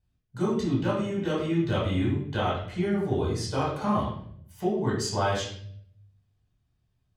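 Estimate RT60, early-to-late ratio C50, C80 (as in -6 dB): 0.60 s, 3.0 dB, 6.5 dB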